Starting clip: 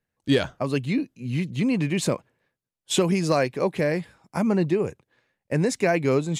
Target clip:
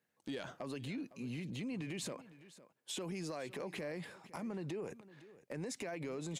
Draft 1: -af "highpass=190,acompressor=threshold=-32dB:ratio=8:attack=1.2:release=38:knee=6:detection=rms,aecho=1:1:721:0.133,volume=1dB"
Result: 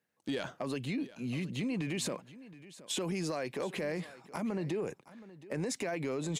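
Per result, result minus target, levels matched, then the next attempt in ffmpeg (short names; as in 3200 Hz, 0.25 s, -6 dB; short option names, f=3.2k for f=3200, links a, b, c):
echo 0.213 s late; compressor: peak gain reduction -7 dB
-af "highpass=190,acompressor=threshold=-32dB:ratio=8:attack=1.2:release=38:knee=6:detection=rms,aecho=1:1:508:0.133,volume=1dB"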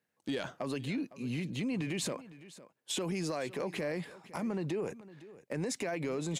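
compressor: peak gain reduction -7 dB
-af "highpass=190,acompressor=threshold=-40dB:ratio=8:attack=1.2:release=38:knee=6:detection=rms,aecho=1:1:508:0.133,volume=1dB"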